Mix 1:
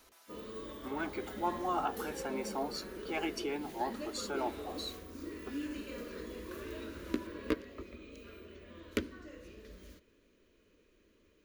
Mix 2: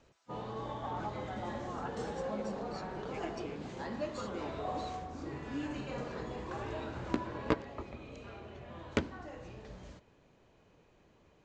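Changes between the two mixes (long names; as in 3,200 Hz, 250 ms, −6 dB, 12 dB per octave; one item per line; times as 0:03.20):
speech −11.5 dB
first sound: remove phaser with its sweep stopped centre 330 Hz, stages 4
master: add Butterworth low-pass 8,200 Hz 96 dB per octave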